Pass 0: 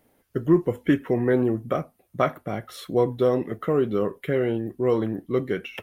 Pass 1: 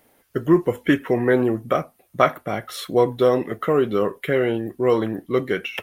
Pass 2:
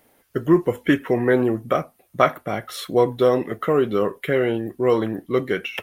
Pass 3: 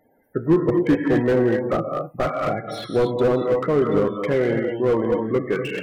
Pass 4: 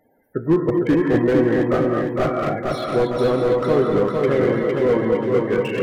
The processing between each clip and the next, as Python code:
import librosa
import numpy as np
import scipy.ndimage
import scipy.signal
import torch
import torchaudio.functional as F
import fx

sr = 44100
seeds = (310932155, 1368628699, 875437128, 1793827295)

y1 = fx.low_shelf(x, sr, hz=460.0, db=-8.5)
y1 = y1 * librosa.db_to_amplitude(8.0)
y2 = y1
y3 = fx.spec_topn(y2, sr, count=32)
y3 = fx.rev_gated(y3, sr, seeds[0], gate_ms=280, shape='rising', drr_db=3.0)
y3 = fx.slew_limit(y3, sr, full_power_hz=89.0)
y4 = fx.echo_feedback(y3, sr, ms=457, feedback_pct=49, wet_db=-3)